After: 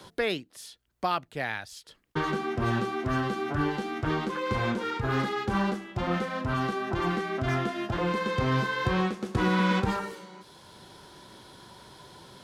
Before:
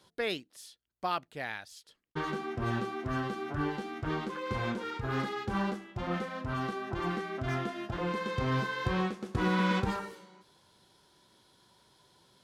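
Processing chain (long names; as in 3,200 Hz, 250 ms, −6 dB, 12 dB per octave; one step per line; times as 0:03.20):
multiband upward and downward compressor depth 40%
level +5 dB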